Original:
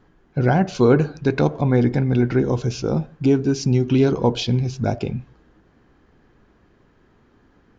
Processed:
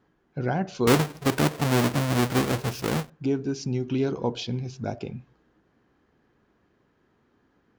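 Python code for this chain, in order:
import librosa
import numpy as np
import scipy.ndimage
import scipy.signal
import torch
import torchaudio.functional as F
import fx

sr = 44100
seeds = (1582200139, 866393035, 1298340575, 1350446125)

y = fx.halfwave_hold(x, sr, at=(0.87, 3.1))
y = fx.highpass(y, sr, hz=120.0, slope=6)
y = y * librosa.db_to_amplitude(-8.0)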